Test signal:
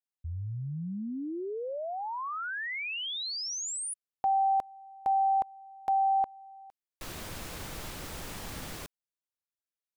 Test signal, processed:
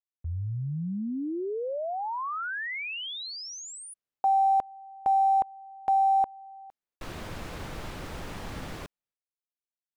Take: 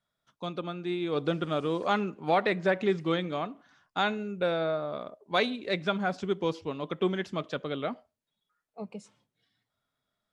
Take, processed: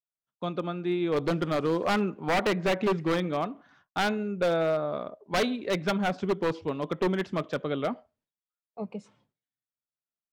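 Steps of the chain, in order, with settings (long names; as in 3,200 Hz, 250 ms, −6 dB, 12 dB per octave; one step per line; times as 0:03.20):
noise gate with hold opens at −49 dBFS, closes at −51 dBFS, hold 239 ms, range −27 dB
low-pass filter 2,200 Hz 6 dB per octave
wave folding −23 dBFS
level +4 dB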